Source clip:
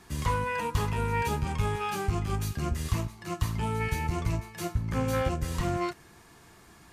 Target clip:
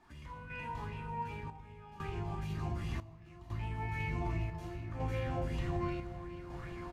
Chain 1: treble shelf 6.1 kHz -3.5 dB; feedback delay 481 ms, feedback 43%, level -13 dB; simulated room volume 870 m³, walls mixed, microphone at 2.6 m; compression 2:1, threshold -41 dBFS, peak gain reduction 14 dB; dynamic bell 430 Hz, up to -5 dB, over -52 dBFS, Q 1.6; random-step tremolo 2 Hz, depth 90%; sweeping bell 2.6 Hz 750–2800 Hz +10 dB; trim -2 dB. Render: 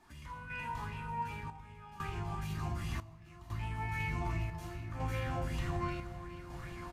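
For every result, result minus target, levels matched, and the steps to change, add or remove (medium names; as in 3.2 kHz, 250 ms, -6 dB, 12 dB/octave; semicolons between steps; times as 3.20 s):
8 kHz band +6.5 dB; 500 Hz band -3.0 dB
change: treble shelf 6.1 kHz -14.5 dB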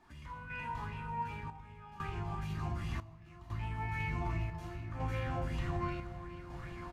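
500 Hz band -3.0 dB
change: dynamic bell 1.3 kHz, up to -5 dB, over -52 dBFS, Q 1.6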